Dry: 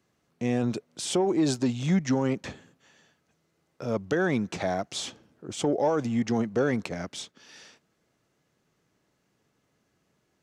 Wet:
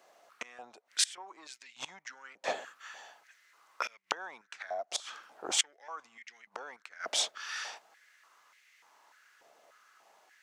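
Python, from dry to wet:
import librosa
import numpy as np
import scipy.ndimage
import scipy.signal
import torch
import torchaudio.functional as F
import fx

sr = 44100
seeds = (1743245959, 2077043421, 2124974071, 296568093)

y = fx.gate_flip(x, sr, shuts_db=-23.0, range_db=-25)
y = fx.filter_held_highpass(y, sr, hz=3.4, low_hz=660.0, high_hz=2100.0)
y = y * librosa.db_to_amplitude(8.5)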